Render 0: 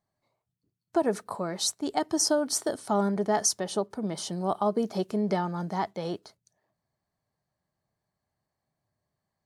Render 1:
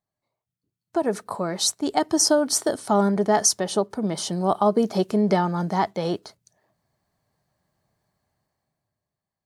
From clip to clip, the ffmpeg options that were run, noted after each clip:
-af "dynaudnorm=f=120:g=17:m=15dB,volume=-5.5dB"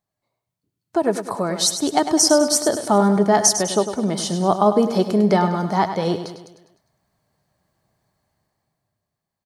-af "aecho=1:1:101|202|303|404|505|606:0.316|0.161|0.0823|0.0419|0.0214|0.0109,volume=3.5dB"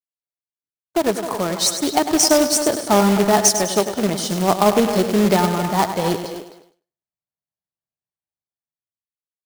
-filter_complex "[0:a]agate=range=-33dB:threshold=-34dB:ratio=3:detection=peak,asplit=2[a][b];[b]adelay=260,highpass=300,lowpass=3.4k,asoftclip=type=hard:threshold=-12dB,volume=-9dB[c];[a][c]amix=inputs=2:normalize=0,acrusher=bits=2:mode=log:mix=0:aa=0.000001"

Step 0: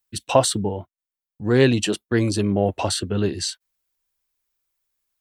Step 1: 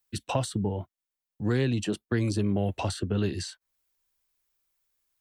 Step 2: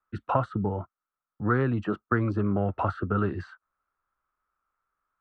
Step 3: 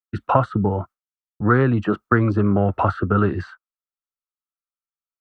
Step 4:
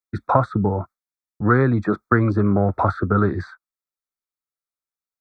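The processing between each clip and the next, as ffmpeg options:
-filter_complex "[0:a]acrossover=split=220|1700[a][b][c];[a]acompressor=threshold=-26dB:ratio=4[d];[b]acompressor=threshold=-31dB:ratio=4[e];[c]acompressor=threshold=-39dB:ratio=4[f];[d][e][f]amix=inputs=3:normalize=0"
-af "lowpass=f=1.3k:t=q:w=9.5"
-af "agate=range=-33dB:threshold=-42dB:ratio=3:detection=peak,volume=8dB"
-af "asuperstop=centerf=2900:order=8:qfactor=3"

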